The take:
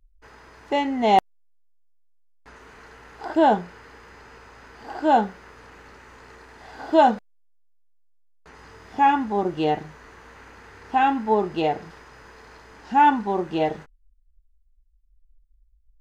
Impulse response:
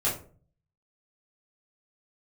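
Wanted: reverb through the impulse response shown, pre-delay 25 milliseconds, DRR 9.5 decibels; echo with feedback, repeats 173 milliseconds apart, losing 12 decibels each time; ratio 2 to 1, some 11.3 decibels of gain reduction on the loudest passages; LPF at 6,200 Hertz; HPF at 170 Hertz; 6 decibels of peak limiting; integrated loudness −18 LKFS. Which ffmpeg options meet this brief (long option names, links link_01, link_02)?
-filter_complex "[0:a]highpass=170,lowpass=6200,acompressor=threshold=-33dB:ratio=2,alimiter=limit=-23dB:level=0:latency=1,aecho=1:1:173|346|519:0.251|0.0628|0.0157,asplit=2[link_01][link_02];[1:a]atrim=start_sample=2205,adelay=25[link_03];[link_02][link_03]afir=irnorm=-1:irlink=0,volume=-19dB[link_04];[link_01][link_04]amix=inputs=2:normalize=0,volume=16.5dB"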